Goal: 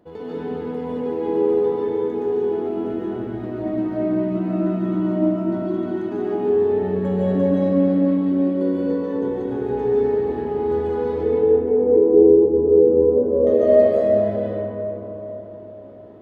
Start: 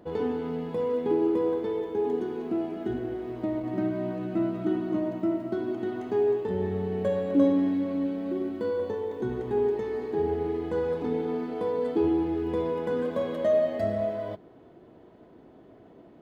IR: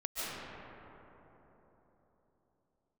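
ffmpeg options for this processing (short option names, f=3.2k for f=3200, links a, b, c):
-filter_complex "[0:a]asettb=1/sr,asplit=3[a][b][c];[a]atrim=end=11.234[d];[b]atrim=start=11.23:end=13.47,asetpts=PTS-STARTPTS,afade=t=in:d=0.004:c=qsin,afade=t=out:st=2.236:d=0.004:c=qsin,lowpass=f=430:t=q:w=4.9[e];[c]atrim=start=13.466[f];[d][e]acrossfade=d=0.004:c1=hsin:c2=qsin[g];[g][f]acrossfade=d=0.004:c1=qsin:c2=hsin[h];[1:a]atrim=start_sample=2205[i];[h][i]afir=irnorm=-1:irlink=0,volume=-1dB"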